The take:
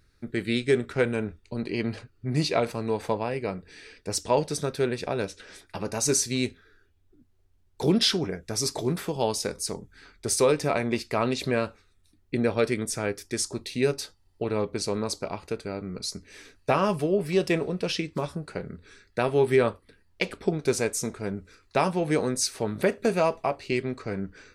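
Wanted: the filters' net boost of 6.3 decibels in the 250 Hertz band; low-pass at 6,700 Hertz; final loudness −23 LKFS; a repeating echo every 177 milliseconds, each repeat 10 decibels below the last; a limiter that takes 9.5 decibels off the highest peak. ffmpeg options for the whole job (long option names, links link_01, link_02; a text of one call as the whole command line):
ffmpeg -i in.wav -af "lowpass=6700,equalizer=frequency=250:width_type=o:gain=8,alimiter=limit=-16.5dB:level=0:latency=1,aecho=1:1:177|354|531|708:0.316|0.101|0.0324|0.0104,volume=5dB" out.wav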